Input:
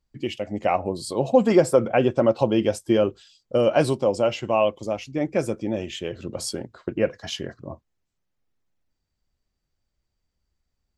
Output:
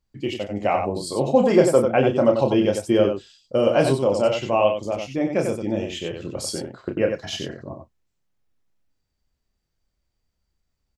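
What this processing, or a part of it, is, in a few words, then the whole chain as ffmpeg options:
slapback doubling: -filter_complex "[0:a]asplit=3[a][b][c];[b]adelay=30,volume=-6dB[d];[c]adelay=93,volume=-6dB[e];[a][d][e]amix=inputs=3:normalize=0"

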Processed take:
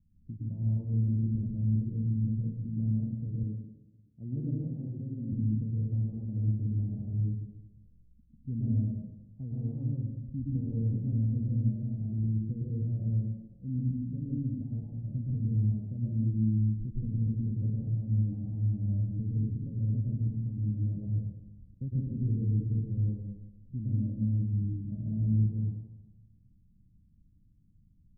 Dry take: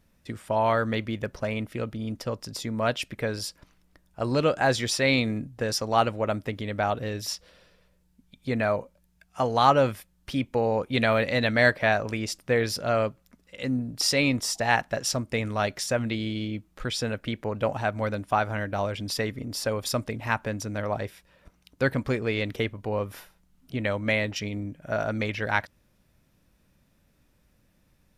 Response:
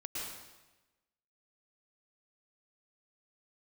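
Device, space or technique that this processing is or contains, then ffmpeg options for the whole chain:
club heard from the street: -filter_complex "[0:a]alimiter=limit=-15dB:level=0:latency=1:release=355,lowpass=f=200:w=0.5412,lowpass=f=200:w=1.3066[a];[1:a]atrim=start_sample=2205[b];[a][b]afir=irnorm=-1:irlink=0,asettb=1/sr,asplit=3[c][d][e];[c]atrim=end=3.434[f];[d]atrim=start=3.43:end=5.33,asetpts=PTS-STARTPTS,afade=t=in:d=0.004:c=qsin,afade=t=out:st=1.896:d=0.004:c=qsin,highpass=140[g];[e]atrim=start=5.326[h];[f][g]acrossfade=d=0.004:c1=hsin:c2=qsin[i];[i][h]acrossfade=d=0.004:c1=qsin:c2=hsin,volume=3.5dB"

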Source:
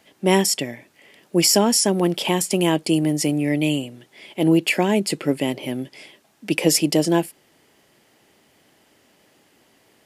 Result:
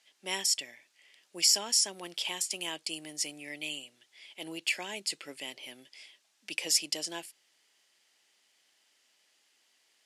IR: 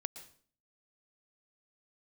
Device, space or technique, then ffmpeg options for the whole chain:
piezo pickup straight into a mixer: -af "lowpass=5.7k,aderivative"

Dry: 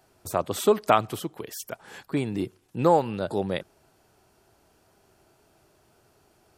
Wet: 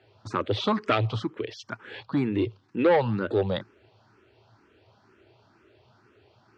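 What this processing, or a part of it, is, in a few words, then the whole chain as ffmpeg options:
barber-pole phaser into a guitar amplifier: -filter_complex "[0:a]asplit=2[a][b];[b]afreqshift=2.1[c];[a][c]amix=inputs=2:normalize=1,asoftclip=type=tanh:threshold=-20.5dB,highpass=100,equalizer=f=110:t=q:w=4:g=10,equalizer=f=160:t=q:w=4:g=-9,equalizer=f=710:t=q:w=4:g=-7,lowpass=f=4.2k:w=0.5412,lowpass=f=4.2k:w=1.3066,volume=7dB"

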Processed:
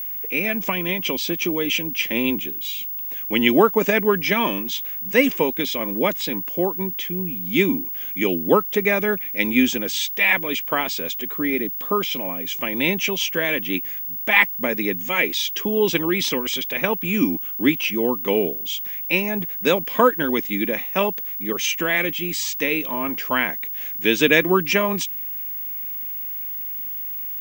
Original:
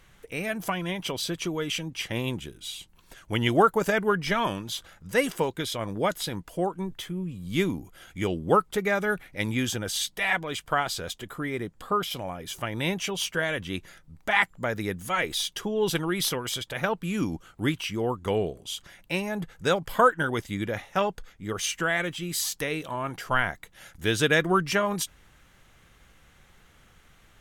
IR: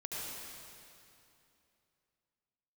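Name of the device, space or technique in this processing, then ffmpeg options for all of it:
old television with a line whistle: -af "highpass=f=190:w=0.5412,highpass=f=190:w=1.3066,equalizer=f=260:t=q:w=4:g=6,equalizer=f=740:t=q:w=4:g=-7,equalizer=f=1.4k:t=q:w=4:g=-10,equalizer=f=2.4k:t=q:w=4:g=7,equalizer=f=4.4k:t=q:w=4:g=-6,lowpass=f=6.8k:w=0.5412,lowpass=f=6.8k:w=1.3066,aeval=exprs='val(0)+0.0224*sin(2*PI*15625*n/s)':c=same,volume=6.5dB"

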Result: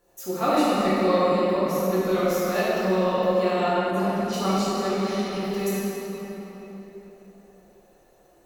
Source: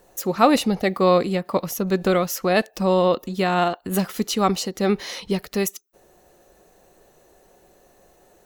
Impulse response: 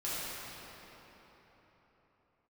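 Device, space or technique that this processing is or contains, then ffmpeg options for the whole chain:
cathedral: -filter_complex "[1:a]atrim=start_sample=2205[a];[0:a][a]afir=irnorm=-1:irlink=0,asplit=3[b][c][d];[b]afade=t=out:st=3.9:d=0.02[e];[c]aemphasis=mode=reproduction:type=50fm,afade=t=in:st=3.9:d=0.02,afade=t=out:st=4.32:d=0.02[f];[d]afade=t=in:st=4.32:d=0.02[g];[e][f][g]amix=inputs=3:normalize=0,bandreject=f=60:t=h:w=6,bandreject=f=120:t=h:w=6,bandreject=f=180:t=h:w=6,volume=-8.5dB"

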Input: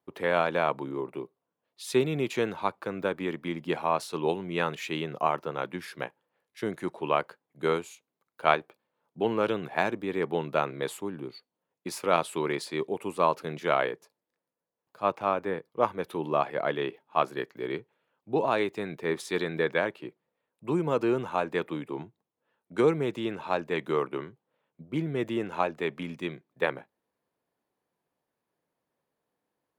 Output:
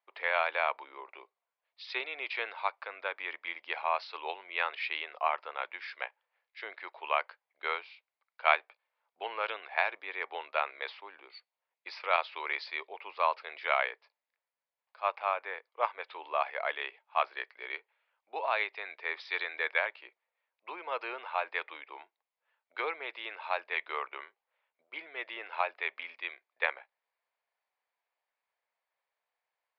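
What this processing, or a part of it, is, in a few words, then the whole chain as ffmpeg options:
musical greeting card: -af "aresample=11025,aresample=44100,highpass=f=650:w=0.5412,highpass=f=650:w=1.3066,equalizer=f=2.2k:t=o:w=0.54:g=8,volume=-3dB"

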